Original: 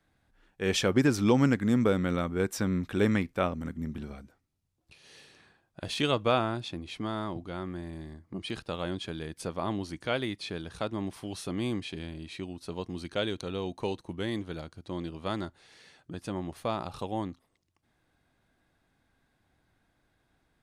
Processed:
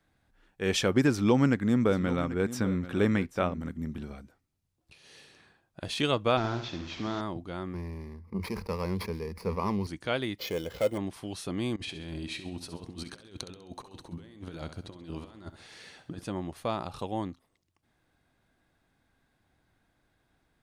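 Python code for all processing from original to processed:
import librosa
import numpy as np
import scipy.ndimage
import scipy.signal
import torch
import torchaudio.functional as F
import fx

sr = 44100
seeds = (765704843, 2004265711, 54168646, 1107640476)

y = fx.chain(x, sr, fx.high_shelf(hz=4900.0, db=-5.0),
    fx.echo_single(ms=787, db=-14.5), at=(1.11, 3.7))
y = fx.chain(y, sr, fx.delta_mod(bps=32000, step_db=-39.5),
    fx.room_flutter(wall_m=12.0, rt60_s=0.49), at=(6.37, 7.21))
y = fx.chain(y, sr, fx.median_filter(points=15),
    fx.ripple_eq(per_octave=0.86, db=13),
    fx.sustainer(db_per_s=100.0), at=(7.73, 9.87))
y = fx.chain(y, sr, fx.sample_hold(seeds[0], rate_hz=9000.0, jitter_pct=0),
    fx.clip_hard(threshold_db=-30.0),
    fx.small_body(hz=(510.0, 2100.0, 3000.0), ring_ms=35, db=16), at=(10.38, 10.98))
y = fx.chain(y, sr, fx.over_compress(threshold_db=-41.0, ratio=-0.5),
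    fx.echo_feedback(ms=66, feedback_pct=45, wet_db=-11.5), at=(11.76, 16.24))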